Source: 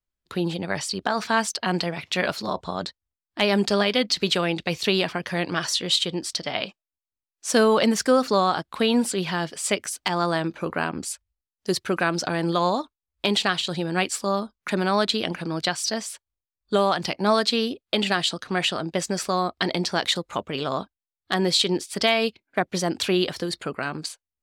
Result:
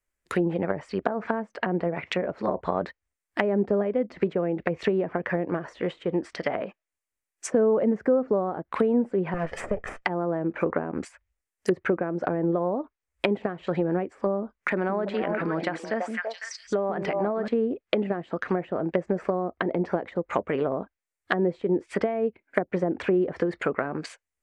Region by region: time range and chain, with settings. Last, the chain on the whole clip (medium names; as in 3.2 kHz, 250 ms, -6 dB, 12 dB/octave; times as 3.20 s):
9.34–10.05 s: comb filter that takes the minimum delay 1.6 ms + treble shelf 8 kHz +2 dB
14.55–17.48 s: repeats whose band climbs or falls 167 ms, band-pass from 250 Hz, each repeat 1.4 oct, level -4 dB + compression 2.5:1, threshold -28 dBFS
whole clip: graphic EQ 125/500/2000/4000/8000 Hz -4/+5/+10/-9/+7 dB; compression 2:1, threshold -23 dBFS; low-pass that closes with the level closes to 520 Hz, closed at -21.5 dBFS; trim +2.5 dB